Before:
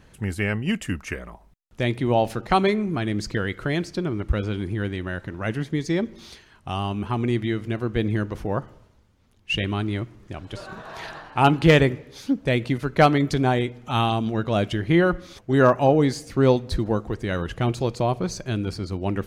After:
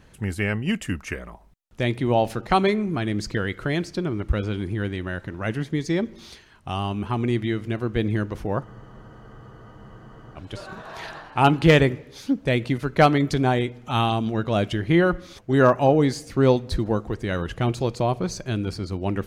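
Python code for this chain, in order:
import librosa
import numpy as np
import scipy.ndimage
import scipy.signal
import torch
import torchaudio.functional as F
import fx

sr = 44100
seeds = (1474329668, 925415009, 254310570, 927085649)

y = fx.spec_freeze(x, sr, seeds[0], at_s=8.67, hold_s=1.69)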